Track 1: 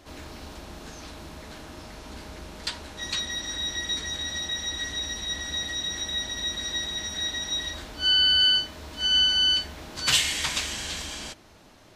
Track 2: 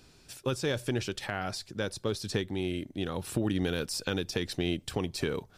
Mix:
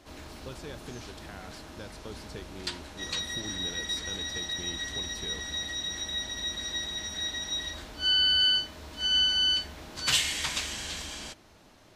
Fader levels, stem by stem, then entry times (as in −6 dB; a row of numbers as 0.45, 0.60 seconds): −3.5, −12.5 decibels; 0.00, 0.00 seconds